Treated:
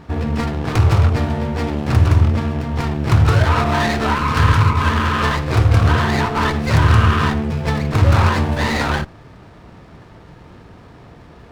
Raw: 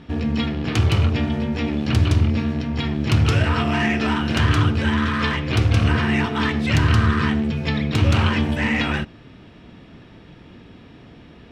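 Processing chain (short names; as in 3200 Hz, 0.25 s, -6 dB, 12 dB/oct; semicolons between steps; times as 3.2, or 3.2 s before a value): ten-band EQ 250 Hz -8 dB, 1000 Hz +4 dB, 4000 Hz -7 dB; spectral repair 4.17–5.07, 230–1300 Hz after; running maximum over 9 samples; gain +5.5 dB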